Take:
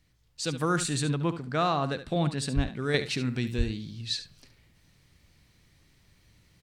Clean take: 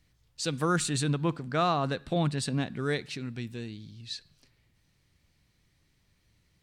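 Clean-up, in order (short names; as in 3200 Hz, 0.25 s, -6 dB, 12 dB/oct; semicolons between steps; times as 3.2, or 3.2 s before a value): 2.55–2.67 HPF 140 Hz 24 dB/oct; 3.57–3.69 HPF 140 Hz 24 dB/oct; inverse comb 71 ms -12 dB; gain 0 dB, from 2.94 s -7 dB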